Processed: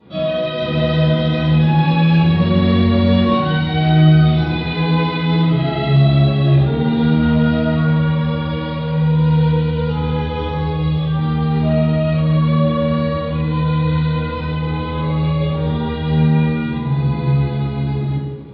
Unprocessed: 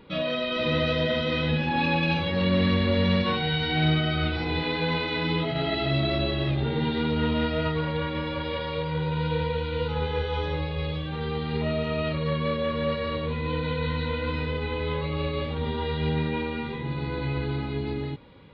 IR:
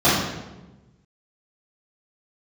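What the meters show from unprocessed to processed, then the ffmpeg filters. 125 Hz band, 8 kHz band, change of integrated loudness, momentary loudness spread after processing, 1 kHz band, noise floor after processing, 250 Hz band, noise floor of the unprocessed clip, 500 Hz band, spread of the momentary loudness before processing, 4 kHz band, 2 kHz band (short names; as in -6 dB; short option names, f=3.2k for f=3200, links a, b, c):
+14.0 dB, n/a, +10.5 dB, 7 LU, +7.5 dB, -22 dBFS, +12.5 dB, -32 dBFS, +6.0 dB, 7 LU, +3.0 dB, +3.5 dB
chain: -filter_complex "[1:a]atrim=start_sample=2205[a];[0:a][a]afir=irnorm=-1:irlink=0,volume=-17dB"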